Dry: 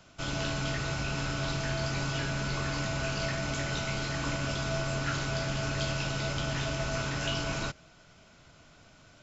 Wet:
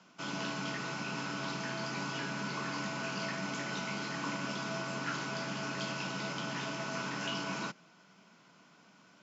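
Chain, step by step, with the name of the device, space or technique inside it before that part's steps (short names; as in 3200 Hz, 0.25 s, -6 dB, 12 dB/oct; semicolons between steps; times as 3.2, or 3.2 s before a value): television speaker (speaker cabinet 180–6800 Hz, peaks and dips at 190 Hz +8 dB, 620 Hz -5 dB, 990 Hz +6 dB, 3800 Hz -4 dB); gain -3.5 dB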